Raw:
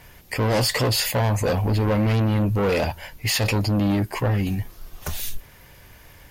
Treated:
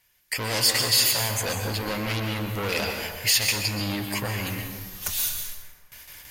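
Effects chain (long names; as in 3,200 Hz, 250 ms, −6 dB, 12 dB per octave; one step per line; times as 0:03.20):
noise gate with hold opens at −36 dBFS
tilt shelving filter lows −9.5 dB, about 1,500 Hz
in parallel at +1 dB: downward compressor, threshold −30 dBFS, peak gain reduction 16.5 dB
on the sum: dense smooth reverb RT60 1.5 s, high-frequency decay 0.5×, pre-delay 110 ms, DRR 3.5 dB
level −6 dB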